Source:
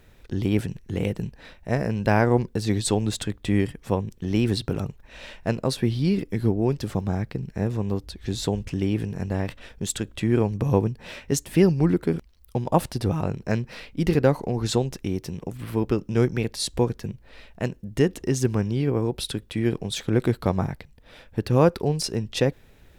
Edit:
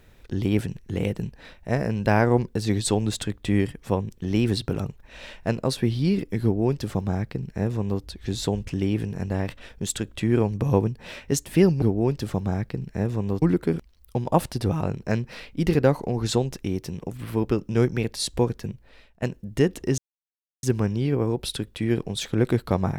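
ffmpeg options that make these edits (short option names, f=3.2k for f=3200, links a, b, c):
-filter_complex "[0:a]asplit=5[a][b][c][d][e];[a]atrim=end=11.822[f];[b]atrim=start=6.428:end=8.032[g];[c]atrim=start=11.818:end=17.62,asetpts=PTS-STARTPTS,afade=t=out:st=5.262:d=0.54:silence=0.141254[h];[d]atrim=start=17.62:end=18.38,asetpts=PTS-STARTPTS,afade=t=in:d=0.004:c=hsin:silence=0.141254,afade=t=out:st=0.756:d=0.004:c=hsin,apad=pad_dur=0.65[i];[e]atrim=start=18.38,asetpts=PTS-STARTPTS,afade=t=in:d=0.004:c=hsin[j];[f][g]acrossfade=d=0.004:c1=hsin:c2=hsin[k];[h][i][j]concat=n=3:v=0:a=1[l];[k][l]acrossfade=d=0.004:c1=hsin:c2=hsin"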